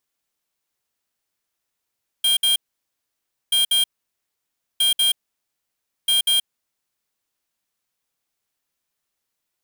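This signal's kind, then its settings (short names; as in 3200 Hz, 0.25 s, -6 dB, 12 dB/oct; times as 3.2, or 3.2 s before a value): beep pattern square 3210 Hz, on 0.13 s, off 0.06 s, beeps 2, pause 0.96 s, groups 4, -17.5 dBFS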